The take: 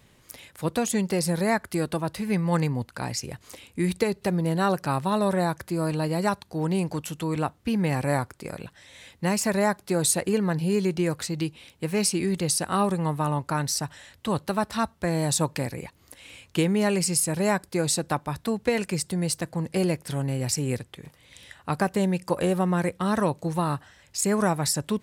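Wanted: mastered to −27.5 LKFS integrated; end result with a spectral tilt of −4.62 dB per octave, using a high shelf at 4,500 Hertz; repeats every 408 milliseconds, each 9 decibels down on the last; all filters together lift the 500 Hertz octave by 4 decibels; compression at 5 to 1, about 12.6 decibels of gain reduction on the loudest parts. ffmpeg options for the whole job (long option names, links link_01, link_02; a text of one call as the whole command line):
ffmpeg -i in.wav -af "equalizer=frequency=500:width_type=o:gain=5,highshelf=frequency=4500:gain=3.5,acompressor=threshold=-29dB:ratio=5,aecho=1:1:408|816|1224|1632:0.355|0.124|0.0435|0.0152,volume=5dB" out.wav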